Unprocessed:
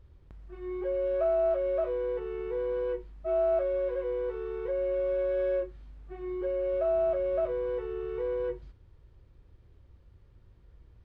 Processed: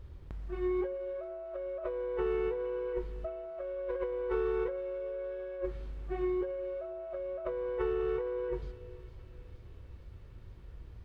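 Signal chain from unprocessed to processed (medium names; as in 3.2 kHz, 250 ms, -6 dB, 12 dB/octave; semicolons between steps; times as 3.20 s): dynamic bell 1.1 kHz, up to +5 dB, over -41 dBFS, Q 0.76; compressor with a negative ratio -36 dBFS, ratio -1; feedback echo behind a high-pass 464 ms, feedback 79%, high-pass 2.9 kHz, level -12 dB; on a send at -18 dB: reverberation RT60 3.2 s, pre-delay 83 ms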